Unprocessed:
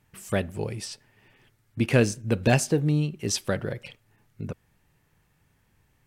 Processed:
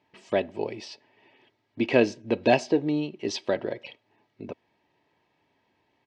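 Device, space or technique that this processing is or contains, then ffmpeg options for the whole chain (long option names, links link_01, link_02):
kitchen radio: -af "highpass=220,equalizer=frequency=480:width_type=q:width=4:gain=6,equalizer=frequency=830:width_type=q:width=4:gain=7,equalizer=frequency=1400:width_type=q:width=4:gain=-10,lowpass=frequency=4600:width=0.5412,lowpass=frequency=4600:width=1.3066,aecho=1:1:3.1:0.49"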